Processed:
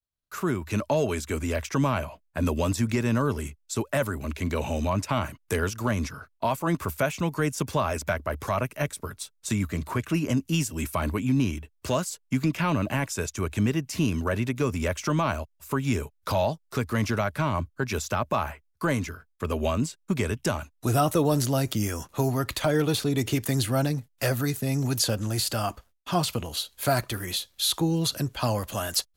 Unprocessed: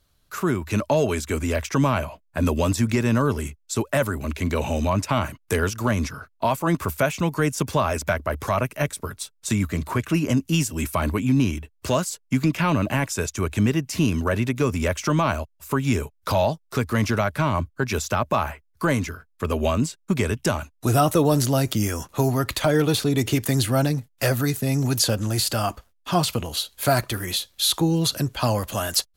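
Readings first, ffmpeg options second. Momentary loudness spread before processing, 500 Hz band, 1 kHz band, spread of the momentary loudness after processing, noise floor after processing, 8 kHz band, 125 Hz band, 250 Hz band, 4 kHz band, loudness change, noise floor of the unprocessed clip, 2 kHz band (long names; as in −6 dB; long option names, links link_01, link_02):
6 LU, −4.0 dB, −4.0 dB, 6 LU, −69 dBFS, −4.0 dB, −4.0 dB, −4.0 dB, −4.0 dB, −4.0 dB, −65 dBFS, −4.0 dB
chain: -af "agate=range=-33dB:threshold=-50dB:ratio=3:detection=peak,volume=-4dB"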